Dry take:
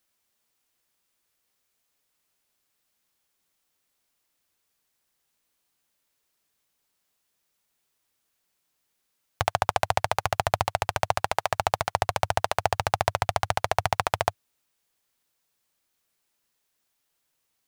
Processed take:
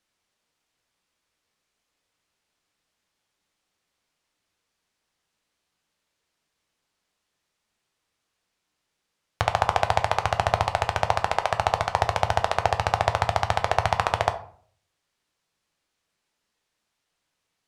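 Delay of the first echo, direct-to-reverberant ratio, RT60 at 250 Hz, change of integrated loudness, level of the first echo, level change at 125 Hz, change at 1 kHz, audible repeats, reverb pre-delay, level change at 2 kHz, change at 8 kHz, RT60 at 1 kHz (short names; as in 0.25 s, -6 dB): none, 7.0 dB, 0.60 s, +2.5 dB, none, +3.5 dB, +2.5 dB, none, 7 ms, +2.0 dB, -3.0 dB, 0.50 s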